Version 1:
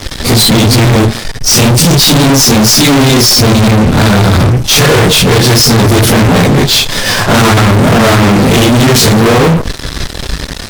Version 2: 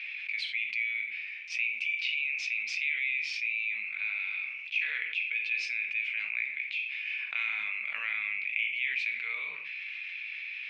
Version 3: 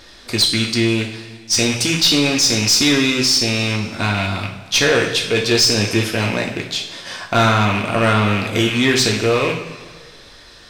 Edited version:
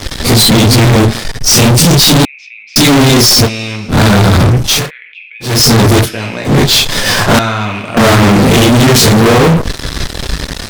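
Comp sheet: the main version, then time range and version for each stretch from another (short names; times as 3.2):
1
2.25–2.76 from 2
3.47–3.91 from 3, crossfade 0.06 s
4.79–5.52 from 2, crossfade 0.24 s
6.05–6.48 from 3, crossfade 0.10 s
7.39–7.97 from 3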